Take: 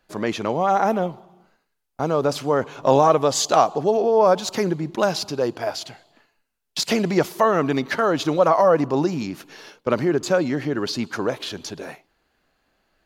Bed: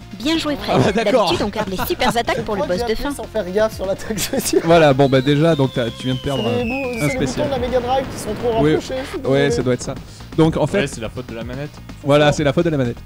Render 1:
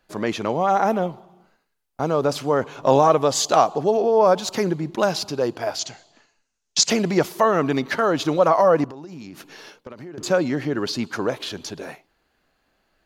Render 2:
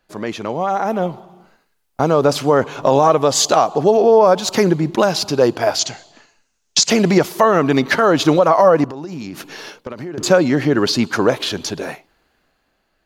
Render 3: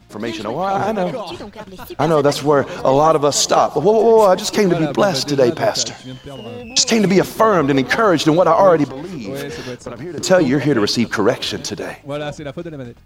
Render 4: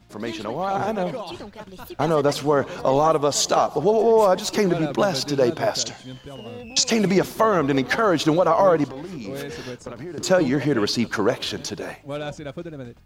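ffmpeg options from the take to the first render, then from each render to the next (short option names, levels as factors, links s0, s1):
-filter_complex "[0:a]asettb=1/sr,asplit=3[s0][s1][s2];[s0]atrim=end=5.794[s3];[s1]atrim=start=5.79:end=6.9,asetpts=PTS-STARTPTS,afade=t=in:d=0.004:c=qsin,afade=t=out:st=1.106:d=0.004:c=qsin,lowpass=f=6500:t=q:w=4.2[s4];[s2]atrim=start=6.896[s5];[s3][s4]acrossfade=d=0.004:c1=hsin:c2=qsin[s6];[s6][s5]acrossfade=d=0.004:c1=qsin:c2=hsin,asettb=1/sr,asplit=3[s7][s8][s9];[s7]atrim=end=8.844[s10];[s8]atrim=start=8.84:end=10.18,asetpts=PTS-STARTPTS,afade=t=in:d=0.004:c=qsin,afade=t=out:st=1.336:d=0.004:c=qsin,acompressor=threshold=0.0224:ratio=20:attack=3.2:release=140:knee=1:detection=peak[s11];[s9]atrim=start=10.176[s12];[s10][s11]acrossfade=d=0.004:c1=hsin:c2=qsin[s13];[s13][s12]acrossfade=d=0.004:c1=qsin:c2=hsin"
-af "alimiter=limit=0.282:level=0:latency=1:release=313,dynaudnorm=f=230:g=9:m=3.76"
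-filter_complex "[1:a]volume=0.251[s0];[0:a][s0]amix=inputs=2:normalize=0"
-af "volume=0.531"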